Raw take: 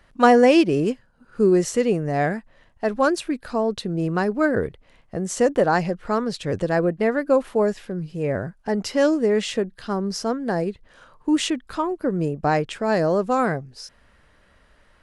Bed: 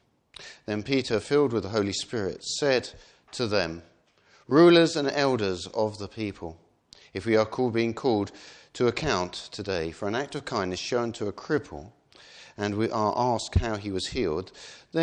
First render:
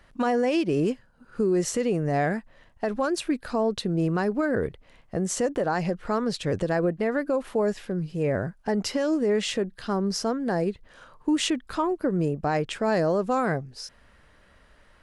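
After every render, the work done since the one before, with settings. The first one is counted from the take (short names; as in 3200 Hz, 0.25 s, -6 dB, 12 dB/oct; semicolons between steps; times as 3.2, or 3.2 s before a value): compressor, threshold -18 dBFS, peak gain reduction 8.5 dB; limiter -16 dBFS, peak gain reduction 7.5 dB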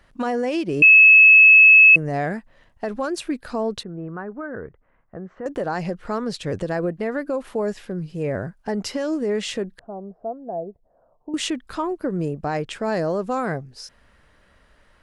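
0.82–1.96 bleep 2590 Hz -6.5 dBFS; 3.83–5.46 ladder low-pass 1800 Hz, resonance 40%; 9.79–11.34 ladder low-pass 740 Hz, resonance 75%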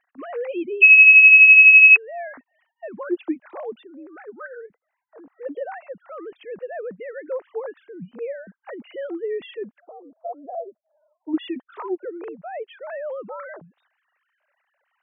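sine-wave speech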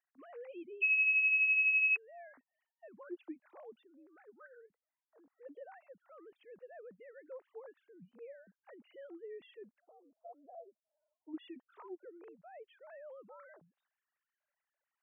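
gain -20 dB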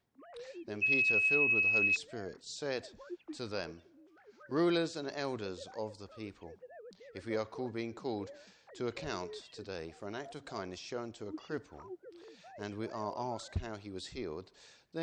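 add bed -13.5 dB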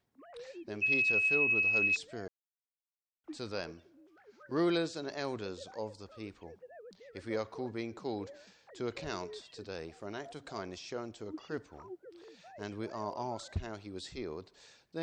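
2.28–3.24 mute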